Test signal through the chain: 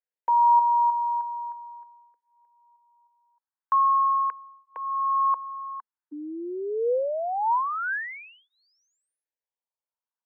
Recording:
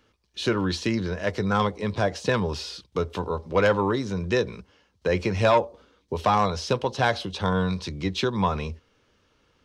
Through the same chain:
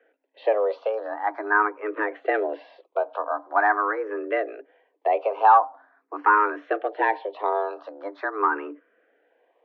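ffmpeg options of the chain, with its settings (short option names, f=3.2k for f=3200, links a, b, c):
-filter_complex "[0:a]afreqshift=210,highpass=380,equalizer=f=490:t=q:w=4:g=9,equalizer=f=950:t=q:w=4:g=10,equalizer=f=1.6k:t=q:w=4:g=7,lowpass=f=2.2k:w=0.5412,lowpass=f=2.2k:w=1.3066,asplit=2[a][b];[b]afreqshift=0.44[c];[a][c]amix=inputs=2:normalize=1"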